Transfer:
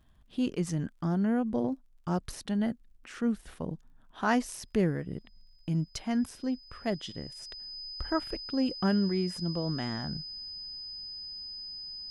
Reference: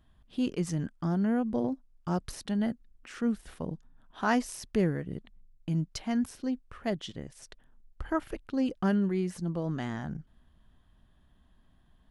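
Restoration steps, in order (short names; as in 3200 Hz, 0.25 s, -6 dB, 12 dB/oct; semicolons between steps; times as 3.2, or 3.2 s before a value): de-click; notch 5000 Hz, Q 30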